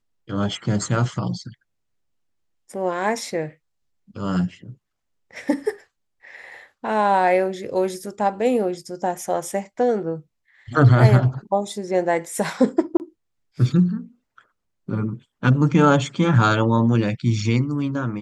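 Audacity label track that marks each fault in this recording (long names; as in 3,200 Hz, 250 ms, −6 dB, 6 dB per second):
12.970000	13.000000	drop-out 29 ms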